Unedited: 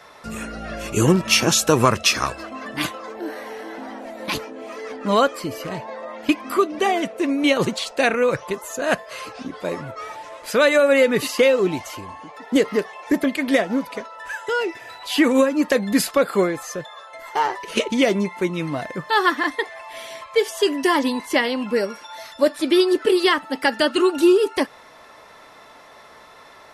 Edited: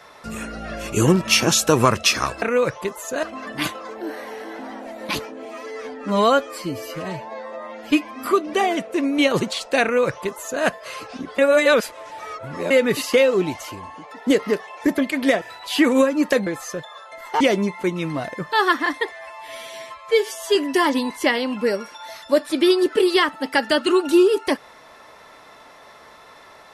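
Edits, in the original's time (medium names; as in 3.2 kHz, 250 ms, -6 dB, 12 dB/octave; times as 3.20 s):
4.64–6.51 s: stretch 1.5×
8.08–8.89 s: copy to 2.42 s
9.64–10.96 s: reverse
13.67–14.81 s: delete
15.86–16.48 s: delete
17.42–17.98 s: delete
19.69–20.65 s: stretch 1.5×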